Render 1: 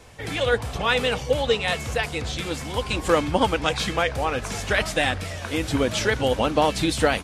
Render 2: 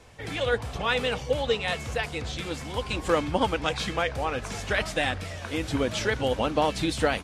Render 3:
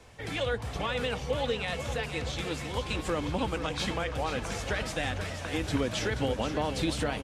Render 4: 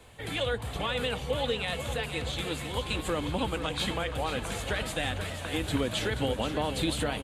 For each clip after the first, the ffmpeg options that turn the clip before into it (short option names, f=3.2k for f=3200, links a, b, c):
-af "highshelf=f=10k:g=-7,volume=-4dB"
-filter_complex "[0:a]acrossover=split=250[a][b];[b]alimiter=limit=-20dB:level=0:latency=1:release=128[c];[a][c]amix=inputs=2:normalize=0,aecho=1:1:481|962|1443|1924|2405|2886|3367:0.335|0.188|0.105|0.0588|0.0329|0.0184|0.0103,volume=-1.5dB"
-af "aexciter=amount=1.4:drive=1.8:freq=3k"